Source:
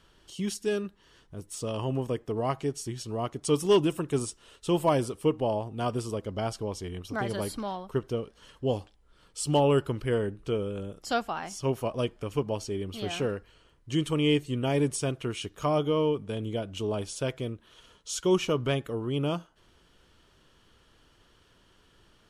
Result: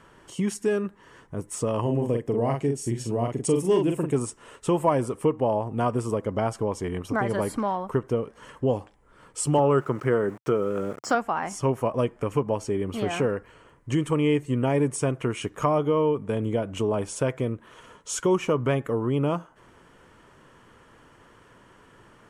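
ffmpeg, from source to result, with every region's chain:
-filter_complex "[0:a]asettb=1/sr,asplit=3[s0][s1][s2];[s0]atrim=end=1.814[s3];[s1]atrim=start=1.81:end=4.15,asetpts=PTS-STARTPTS,afade=t=in:d=0.004:c=qsin,afade=t=out:st=2.336:d=0.004:c=qsin,equalizer=f=1200:w=1.4:g=-10.5,bandreject=f=5900:w=25,asplit=2[s4][s5];[s5]adelay=43,volume=0.596[s6];[s4][s6]amix=inputs=2:normalize=0,atrim=end_sample=103194[s7];[s2]atrim=start=4.146[s8];[s3][s7]acrossfade=d=0.004:c1=hsin:c2=qsin[s9];[s9][s8]acrossfade=d=0.004:c1=qsin:c2=hsin,asettb=1/sr,asplit=3[s10][s11][s12];[s10]atrim=end=9.584[s13];[s11]atrim=start=9.58:end=11.15,asetpts=PTS-STARTPTS,afade=t=in:d=0.004:c=qsin,afade=t=out:st=1.566:d=0.004:c=qsin,highpass=130,equalizer=f=140:t=q:w=4:g=4,equalizer=f=370:t=q:w=4:g=4,equalizer=f=670:t=q:w=4:g=3,equalizer=f=1300:t=q:w=4:g=9,equalizer=f=2700:t=q:w=4:g=-3,equalizer=f=5600:t=q:w=4:g=7,lowpass=f=8400:w=0.5412,lowpass=f=8400:w=1.3066,aeval=exprs='val(0)*gte(abs(val(0)),0.00422)':c=same[s14];[s12]atrim=start=11.146[s15];[s13][s14]acrossfade=d=0.004:c1=hsin:c2=qsin[s16];[s16][s15]acrossfade=d=0.004:c1=qsin:c2=hsin,equalizer=f=125:t=o:w=1:g=9,equalizer=f=250:t=o:w=1:g=8,equalizer=f=500:t=o:w=1:g=8,equalizer=f=1000:t=o:w=1:g=11,equalizer=f=2000:t=o:w=1:g=10,equalizer=f=4000:t=o:w=1:g=-7,equalizer=f=8000:t=o:w=1:g=8,acompressor=threshold=0.0631:ratio=2,volume=0.891"

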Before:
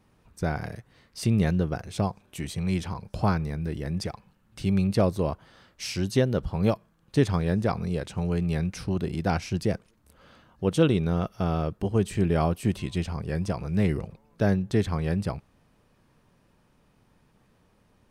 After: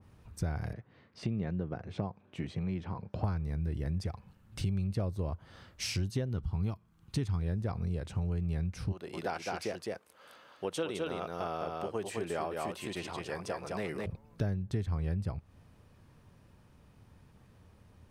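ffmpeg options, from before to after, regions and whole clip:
-filter_complex "[0:a]asettb=1/sr,asplit=3[s0][s1][s2];[s0]atrim=end=0.734[s3];[s1]atrim=start=0.73:end=3.24,asetpts=PTS-STARTPTS,afade=t=in:d=0.004:c=qsin,afade=t=out:st=2.506:d=0.004:c=qsin,highpass=180,lowpass=2700,equalizer=f=1900:w=0.39:g=-3[s4];[s2]atrim=start=3.236[s5];[s3][s4]acrossfade=d=0.004:c1=hsin:c2=qsin[s6];[s6][s5]acrossfade=d=0.004:c1=qsin:c2=hsin,asettb=1/sr,asplit=3[s7][s8][s9];[s7]atrim=end=6.294[s10];[s8]atrim=start=6.29:end=7.42,asetpts=PTS-STARTPTS,afade=t=in:d=0.004:c=qsin,afade=t=out:st=1.126:d=0.004:c=qsin,equalizer=f=560:w=2.7:g=-12,bandreject=f=1700:w=12[s11];[s9]atrim=start=7.416[s12];[s10][s11]acrossfade=d=0.004:c1=hsin:c2=qsin[s13];[s13][s12]acrossfade=d=0.004:c1=qsin:c2=hsin,asettb=1/sr,asplit=3[s14][s15][s16];[s14]atrim=end=8.924[s17];[s15]atrim=start=8.92:end=14.06,asetpts=PTS-STARTPTS,afade=t=in:d=0.004:c=qsin,afade=t=out:st=5.136:d=0.004:c=qsin,highpass=500,aecho=1:1:211:0.631,atrim=end_sample=226674[s18];[s16]atrim=start=14.056[s19];[s17][s18]acrossfade=d=0.004:c1=hsin:c2=qsin[s20];[s20][s19]acrossfade=d=0.004:c1=qsin:c2=hsin,equalizer=f=85:t=o:w=1.1:g=11.5,acompressor=threshold=0.0251:ratio=4,adynamicequalizer=threshold=0.00158:dfrequency=2200:dqfactor=0.7:tfrequency=2200:tqfactor=0.7:attack=5:release=100:ratio=0.375:range=1.5:mode=cutabove:tftype=highshelf"

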